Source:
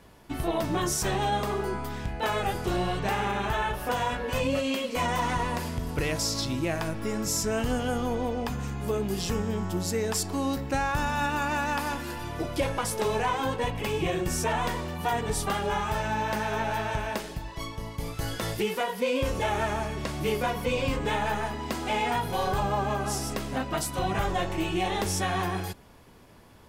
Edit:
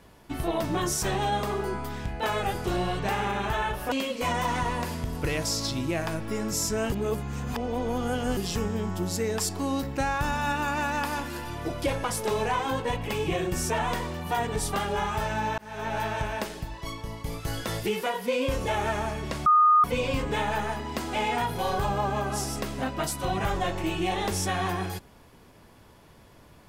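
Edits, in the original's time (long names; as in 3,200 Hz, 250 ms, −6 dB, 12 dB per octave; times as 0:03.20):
0:03.92–0:04.66: remove
0:07.66–0:09.11: reverse
0:16.32–0:16.71: fade in
0:20.20–0:20.58: beep over 1,230 Hz −15 dBFS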